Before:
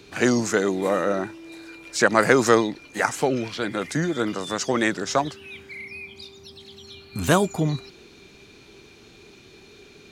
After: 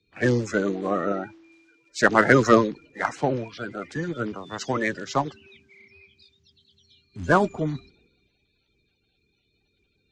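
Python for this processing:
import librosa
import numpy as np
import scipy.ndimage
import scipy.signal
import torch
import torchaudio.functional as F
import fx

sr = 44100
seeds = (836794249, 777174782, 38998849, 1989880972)

y = fx.spec_quant(x, sr, step_db=30)
y = scipy.signal.sosfilt(scipy.signal.butter(4, 7600.0, 'lowpass', fs=sr, output='sos'), y)
y = fx.high_shelf(y, sr, hz=4600.0, db=-10.5)
y = fx.cheby_harmonics(y, sr, harmonics=(8,), levels_db=(-32,), full_scale_db=-2.5)
y = fx.band_widen(y, sr, depth_pct=70)
y = y * librosa.db_to_amplitude(-2.5)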